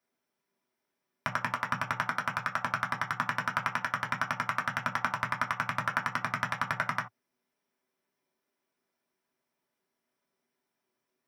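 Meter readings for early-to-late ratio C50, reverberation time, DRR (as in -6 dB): 12.0 dB, no single decay rate, -3.5 dB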